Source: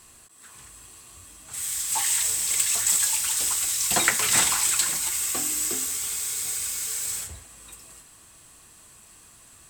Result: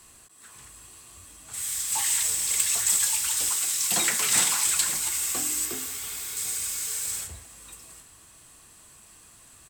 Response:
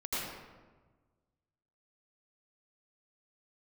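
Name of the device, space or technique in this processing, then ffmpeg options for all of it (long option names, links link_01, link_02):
one-band saturation: -filter_complex "[0:a]acrossover=split=210|2400[link_01][link_02][link_03];[link_02]asoftclip=type=tanh:threshold=-27.5dB[link_04];[link_01][link_04][link_03]amix=inputs=3:normalize=0,asettb=1/sr,asplit=3[link_05][link_06][link_07];[link_05]atrim=end=3.494[link_08];[link_06]atrim=start=3.49:end=4.66,asetpts=PTS-STARTPTS,afade=type=in:duration=0.004:curve=qsin,afade=type=out:start_time=1.166:duration=0.004:curve=qsin,highpass=frequency=130:width=0.5412,highpass=frequency=130:width=1.3066[link_09];[link_07]atrim=start=4.656[link_10];[link_08][link_09]acrossfade=duration=0.004:curve1=hsin:curve2=qsin[link_11];[link_11][link_10]acrossfade=duration=0.004:curve1=qsin:curve2=hsin,asettb=1/sr,asplit=3[link_12][link_13][link_14];[link_12]atrim=end=5.654[link_15];[link_13]atrim=start=5.65:end=6.37,asetpts=PTS-STARTPTS,afade=type=in:duration=0.004:curve=qsin,afade=type=out:start_time=0.716:duration=0.004:curve=qsin,equalizer=frequency=7600:width_type=o:width=1.3:gain=-6[link_16];[link_14]atrim=start=6.366[link_17];[link_15][link_16]acrossfade=duration=0.004:curve1=hsin:curve2=qsin[link_18];[link_18][link_17]acrossfade=duration=0.004:curve1=qsin:curve2=hsin,aecho=1:1:794:0.0631,volume=-1dB"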